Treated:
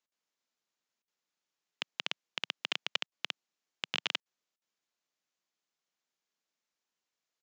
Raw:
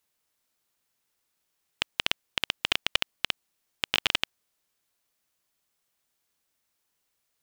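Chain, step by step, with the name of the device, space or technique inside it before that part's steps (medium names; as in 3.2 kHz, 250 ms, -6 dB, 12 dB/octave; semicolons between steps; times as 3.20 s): call with lost packets (high-pass 160 Hz 24 dB/octave; resampled via 16 kHz; lost packets of 60 ms random); trim -8 dB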